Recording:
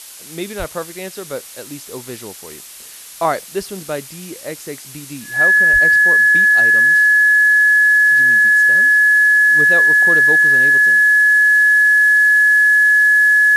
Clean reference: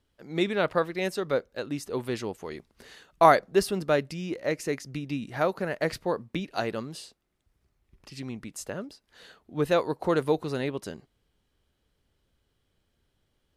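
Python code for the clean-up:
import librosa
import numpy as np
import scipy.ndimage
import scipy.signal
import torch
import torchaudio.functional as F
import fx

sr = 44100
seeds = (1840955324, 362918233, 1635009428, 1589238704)

y = fx.notch(x, sr, hz=1700.0, q=30.0)
y = fx.highpass(y, sr, hz=140.0, slope=24, at=(0.58, 0.7), fade=0.02)
y = fx.highpass(y, sr, hz=140.0, slope=24, at=(5.72, 5.84), fade=0.02)
y = fx.noise_reduce(y, sr, print_start_s=2.67, print_end_s=3.17, reduce_db=30.0)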